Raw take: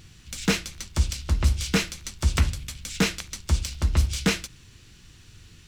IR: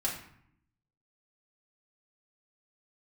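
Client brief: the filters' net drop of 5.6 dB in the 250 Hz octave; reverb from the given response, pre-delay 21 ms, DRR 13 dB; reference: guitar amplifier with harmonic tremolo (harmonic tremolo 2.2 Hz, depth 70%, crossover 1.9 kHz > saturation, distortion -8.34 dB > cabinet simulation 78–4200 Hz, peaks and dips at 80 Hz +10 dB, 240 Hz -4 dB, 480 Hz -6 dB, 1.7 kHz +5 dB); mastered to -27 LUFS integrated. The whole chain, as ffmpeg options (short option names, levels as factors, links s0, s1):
-filter_complex "[0:a]equalizer=f=250:t=o:g=-7,asplit=2[s0][s1];[1:a]atrim=start_sample=2205,adelay=21[s2];[s1][s2]afir=irnorm=-1:irlink=0,volume=0.126[s3];[s0][s3]amix=inputs=2:normalize=0,acrossover=split=1900[s4][s5];[s4]aeval=exprs='val(0)*(1-0.7/2+0.7/2*cos(2*PI*2.2*n/s))':c=same[s6];[s5]aeval=exprs='val(0)*(1-0.7/2-0.7/2*cos(2*PI*2.2*n/s))':c=same[s7];[s6][s7]amix=inputs=2:normalize=0,asoftclip=threshold=0.0596,highpass=78,equalizer=f=80:t=q:w=4:g=10,equalizer=f=240:t=q:w=4:g=-4,equalizer=f=480:t=q:w=4:g=-6,equalizer=f=1700:t=q:w=4:g=5,lowpass=f=4200:w=0.5412,lowpass=f=4200:w=1.3066,volume=2.24"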